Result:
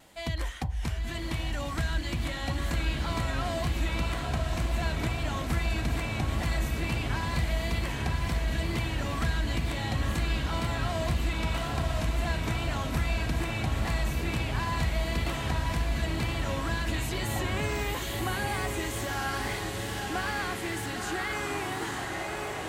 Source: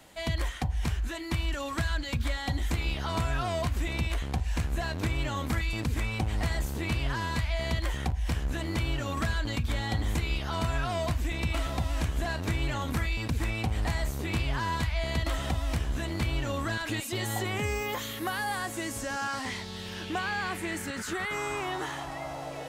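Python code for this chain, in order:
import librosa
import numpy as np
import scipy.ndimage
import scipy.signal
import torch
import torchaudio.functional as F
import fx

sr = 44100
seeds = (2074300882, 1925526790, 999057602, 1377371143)

y = fx.echo_diffused(x, sr, ms=955, feedback_pct=66, wet_db=-3)
y = fx.wow_flutter(y, sr, seeds[0], rate_hz=2.1, depth_cents=35.0)
y = y * 10.0 ** (-2.0 / 20.0)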